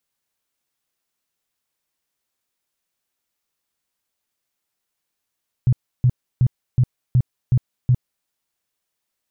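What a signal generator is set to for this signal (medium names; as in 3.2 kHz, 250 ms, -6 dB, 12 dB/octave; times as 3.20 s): tone bursts 125 Hz, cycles 7, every 0.37 s, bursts 7, -11 dBFS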